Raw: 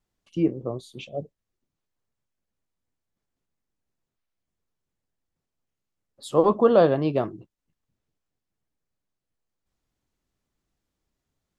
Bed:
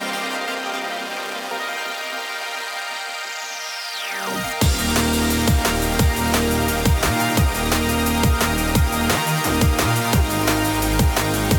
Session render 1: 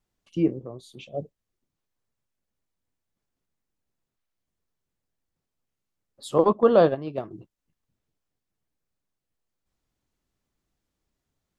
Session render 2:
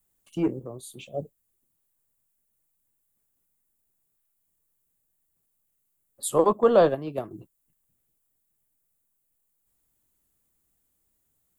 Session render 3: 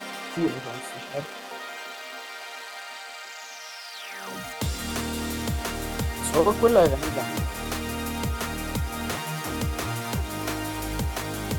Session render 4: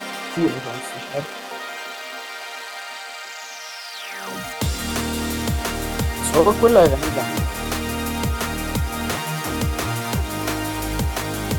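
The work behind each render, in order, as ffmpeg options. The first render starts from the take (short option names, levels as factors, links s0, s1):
-filter_complex "[0:a]asettb=1/sr,asplit=3[s0][s1][s2];[s0]atrim=end=0.594[s3];[s1]atrim=start=0.59:end=1.14,asetpts=PTS-STARTPTS,afade=t=in:d=0.004:c=qsin,afade=t=out:st=0.546:d=0.004:c=qsin,acompressor=threshold=0.00447:ratio=1.5:attack=3.2:release=140:knee=1:detection=peak[s4];[s2]atrim=start=1.136[s5];[s3][s4]acrossfade=d=0.004:c1=hsin:c2=qsin[s6];[s6][s5]acrossfade=d=0.004:c1=qsin:c2=hsin,asettb=1/sr,asplit=3[s7][s8][s9];[s7]atrim=end=6.384[s10];[s8]atrim=start=6.38:end=7.31,asetpts=PTS-STARTPTS,afade=t=in:d=0.004:c=qsin,afade=t=out:st=0.926:d=0.004:c=qsin,agate=range=0.316:threshold=0.0891:ratio=16:release=100:detection=peak[s11];[s9]atrim=start=7.306[s12];[s10][s11]acrossfade=d=0.004:c1=hsin:c2=qsin[s13];[s13][s12]acrossfade=d=0.004:c1=qsin:c2=hsin"
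-filter_complex "[0:a]acrossover=split=350|840|2400[s0][s1][s2][s3];[s0]asoftclip=type=tanh:threshold=0.0501[s4];[s3]aexciter=amount=4.9:drive=7.5:freq=7500[s5];[s4][s1][s2][s5]amix=inputs=4:normalize=0"
-filter_complex "[1:a]volume=0.282[s0];[0:a][s0]amix=inputs=2:normalize=0"
-af "volume=1.88,alimiter=limit=0.794:level=0:latency=1"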